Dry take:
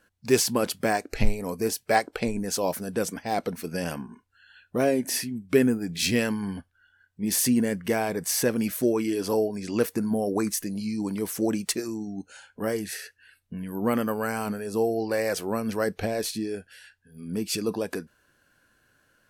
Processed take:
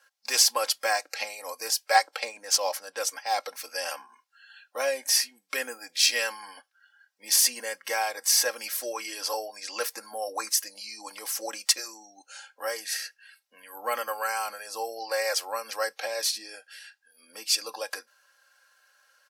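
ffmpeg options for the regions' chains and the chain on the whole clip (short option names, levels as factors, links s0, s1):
-filter_complex "[0:a]asettb=1/sr,asplit=3[s0][s1][s2];[s0]atrim=end=2.234[s3];[s1]atrim=start=2.23:end=3.03,asetpts=PTS-STARTPTS,afade=t=in:d=0.004:c=qsin,afade=t=out:st=0.796:d=0.004:c=qsin,equalizer=f=15000:w=0.48:g=9,adynamicsmooth=sensitivity=7:basefreq=4000[s4];[s2]atrim=start=3.026[s5];[s3][s4]acrossfade=d=0.004:c1=hsin:c2=qsin[s6];[s6][s5]acrossfade=d=0.004:c1=qsin:c2=hsin,highpass=f=640:w=0.5412,highpass=f=640:w=1.3066,equalizer=f=5200:w=2.1:g=7.5,aecho=1:1:3.7:0.75"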